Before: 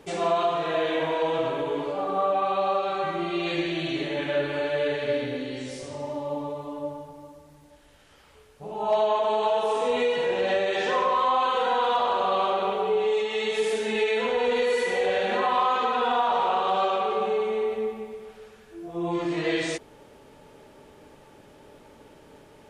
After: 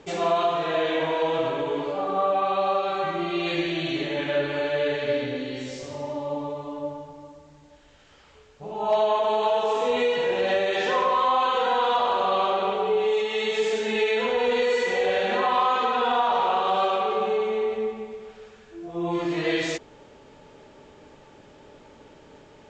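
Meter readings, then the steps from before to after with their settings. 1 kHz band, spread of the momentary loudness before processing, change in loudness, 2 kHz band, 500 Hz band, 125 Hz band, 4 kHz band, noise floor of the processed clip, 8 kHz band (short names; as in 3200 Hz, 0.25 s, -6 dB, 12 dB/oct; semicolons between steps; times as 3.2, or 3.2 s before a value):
+1.0 dB, 11 LU, +1.0 dB, +1.5 dB, +1.0 dB, +1.0 dB, +2.0 dB, -52 dBFS, n/a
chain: elliptic low-pass 7400 Hz, stop band 40 dB; gain +2 dB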